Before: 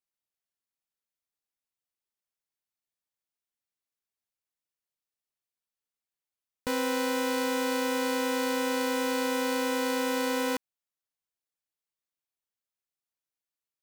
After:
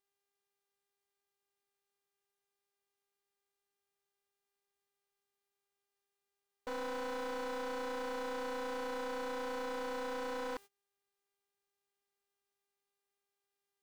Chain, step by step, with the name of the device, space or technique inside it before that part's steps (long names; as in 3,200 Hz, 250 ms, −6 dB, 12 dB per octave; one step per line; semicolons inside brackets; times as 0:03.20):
aircraft radio (band-pass filter 390–2,300 Hz; hard clipping −33.5 dBFS, distortion −7 dB; hum with harmonics 400 Hz, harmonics 35, −63 dBFS −4 dB per octave; white noise bed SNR 23 dB; noise gate −48 dBFS, range −25 dB)
level −3.5 dB